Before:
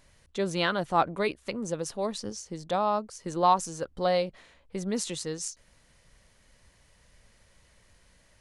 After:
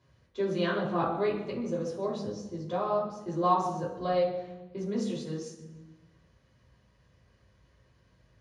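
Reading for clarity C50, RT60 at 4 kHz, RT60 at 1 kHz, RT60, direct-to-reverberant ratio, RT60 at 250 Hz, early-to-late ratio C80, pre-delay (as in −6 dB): 4.0 dB, 0.85 s, 1.0 s, 1.2 s, −6.5 dB, 1.5 s, 7.0 dB, 3 ms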